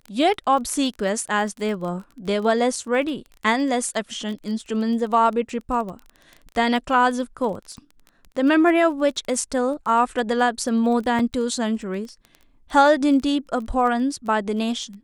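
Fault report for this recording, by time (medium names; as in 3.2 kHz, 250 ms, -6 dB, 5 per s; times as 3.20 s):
crackle 18 per s -30 dBFS
11.19 s: dropout 3.5 ms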